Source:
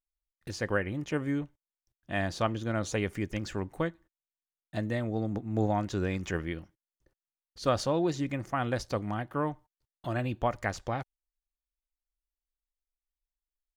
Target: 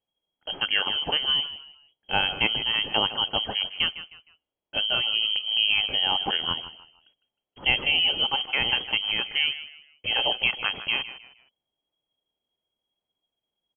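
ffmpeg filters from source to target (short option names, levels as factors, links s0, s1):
-filter_complex "[0:a]equalizer=f=2100:t=o:w=0.43:g=-9.5,asplit=2[s0][s1];[s1]alimiter=limit=0.075:level=0:latency=1:release=80,volume=1[s2];[s0][s2]amix=inputs=2:normalize=0,asplit=4[s3][s4][s5][s6];[s4]adelay=155,afreqshift=49,volume=0.2[s7];[s5]adelay=310,afreqshift=98,volume=0.0617[s8];[s6]adelay=465,afreqshift=147,volume=0.0193[s9];[s3][s7][s8][s9]amix=inputs=4:normalize=0,aexciter=amount=9.8:drive=6.3:freq=2400,lowpass=f=2800:t=q:w=0.5098,lowpass=f=2800:t=q:w=0.6013,lowpass=f=2800:t=q:w=0.9,lowpass=f=2800:t=q:w=2.563,afreqshift=-3300"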